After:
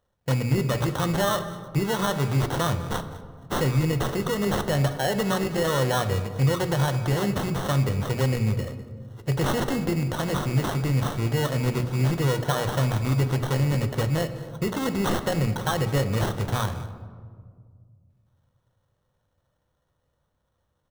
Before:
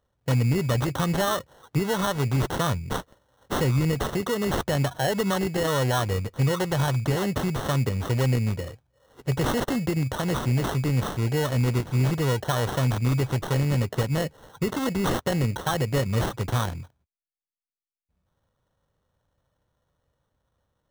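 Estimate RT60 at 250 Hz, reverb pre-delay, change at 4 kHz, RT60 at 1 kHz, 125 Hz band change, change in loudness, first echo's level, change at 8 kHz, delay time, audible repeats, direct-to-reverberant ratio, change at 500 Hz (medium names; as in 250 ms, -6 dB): 2.5 s, 6 ms, +0.5 dB, 1.7 s, 0.0 dB, +0.5 dB, -18.5 dB, 0.0 dB, 203 ms, 1, 9.0 dB, +0.5 dB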